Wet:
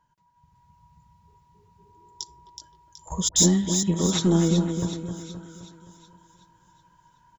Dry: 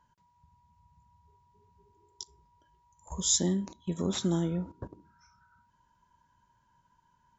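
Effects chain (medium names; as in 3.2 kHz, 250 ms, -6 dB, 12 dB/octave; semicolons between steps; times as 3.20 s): saturation -18.5 dBFS, distortion -21 dB; two-band feedback delay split 2.5 kHz, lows 261 ms, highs 373 ms, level -7 dB; level rider gain up to 9 dB; 3.28–3.83 s: phase dispersion highs, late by 82 ms, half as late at 1.1 kHz; comb 6.3 ms, depth 35%; trim -1.5 dB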